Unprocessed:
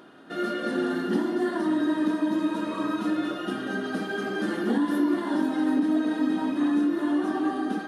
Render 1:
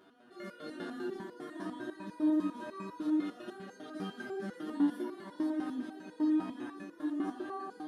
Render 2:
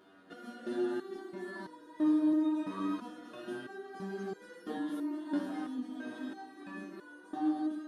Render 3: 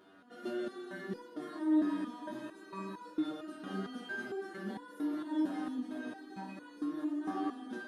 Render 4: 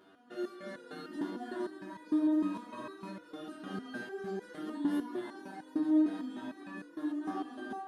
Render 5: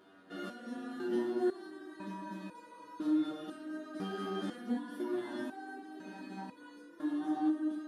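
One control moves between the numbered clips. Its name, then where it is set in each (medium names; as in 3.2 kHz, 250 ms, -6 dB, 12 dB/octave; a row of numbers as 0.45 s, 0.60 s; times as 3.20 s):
resonator arpeggio, rate: 10 Hz, 3 Hz, 4.4 Hz, 6.6 Hz, 2 Hz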